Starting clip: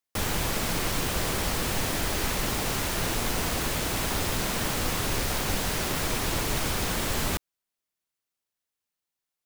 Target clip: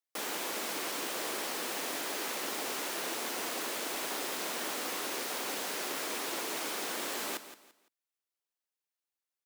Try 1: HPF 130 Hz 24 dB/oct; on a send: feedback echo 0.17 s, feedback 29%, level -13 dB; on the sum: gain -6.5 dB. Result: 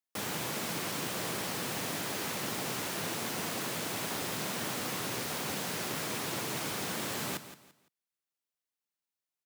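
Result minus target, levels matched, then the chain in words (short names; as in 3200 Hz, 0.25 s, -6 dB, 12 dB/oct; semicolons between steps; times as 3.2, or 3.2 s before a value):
125 Hz band +18.0 dB
HPF 280 Hz 24 dB/oct; on a send: feedback echo 0.17 s, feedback 29%, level -13 dB; on the sum: gain -6.5 dB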